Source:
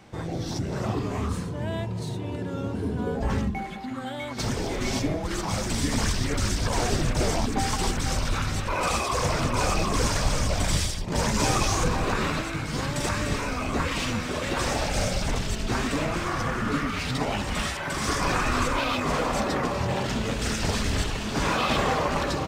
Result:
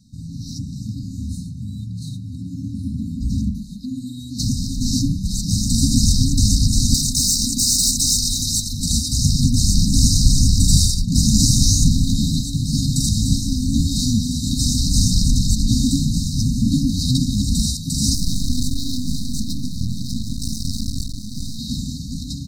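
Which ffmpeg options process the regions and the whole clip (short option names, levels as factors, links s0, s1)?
-filter_complex "[0:a]asettb=1/sr,asplit=3[s0][s1][s2];[s0]atrim=end=6.944[s3];[s1]atrim=start=6.94:end=8.73,asetpts=PTS-STARTPTS,afade=t=in:d=0.004:c=qsin,afade=t=out:st=1.786:d=0.004:c=qsin,bass=f=250:g=-11,treble=f=4000:g=8,asoftclip=type=hard:threshold=0.0794[s4];[s2]atrim=start=8.726[s5];[s3][s4]acrossfade=d=0.004:c1=hsin:c2=qsin[s6];[s6][s5]acrossfade=d=0.004:c1=qsin:c2=hsin,asettb=1/sr,asplit=3[s7][s8][s9];[s7]atrim=end=18.144[s10];[s8]atrim=start=18.14:end=21.59,asetpts=PTS-STARTPTS,afade=t=in:d=0.004:c=qsin,afade=t=out:st=3.446:d=0.004:c=qsin,equalizer=f=7000:t=o:w=0.2:g=-5.5,aeval=exprs='max(val(0),0)':c=same[s11];[s9]atrim=start=21.586[s12];[s10][s11]acrossfade=d=0.004:c1=hsin:c2=qsin[s13];[s13][s12]acrossfade=d=0.004:c1=qsin:c2=hsin,afftfilt=real='re*(1-between(b*sr/4096,280,3700))':imag='im*(1-between(b*sr/4096,280,3700))':win_size=4096:overlap=0.75,dynaudnorm=f=980:g=9:m=3.98,volume=1.19"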